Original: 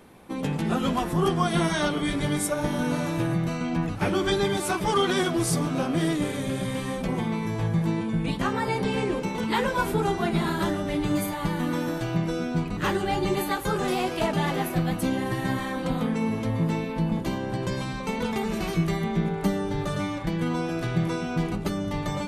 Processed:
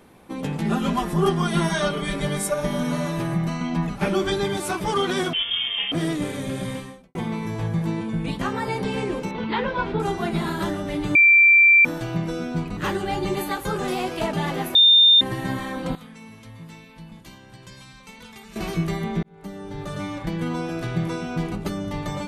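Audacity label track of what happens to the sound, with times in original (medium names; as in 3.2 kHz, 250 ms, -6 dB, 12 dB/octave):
0.610000	4.240000	comb 5 ms
5.330000	5.920000	frequency inversion carrier 3.4 kHz
6.720000	7.150000	fade out quadratic
9.310000	10.000000	low-pass 4 kHz 24 dB/octave
11.150000	11.850000	bleep 2.35 kHz -10 dBFS
14.750000	15.210000	bleep 3.62 kHz -10 dBFS
15.950000	18.560000	amplifier tone stack bass-middle-treble 5-5-5
19.230000	20.200000	fade in linear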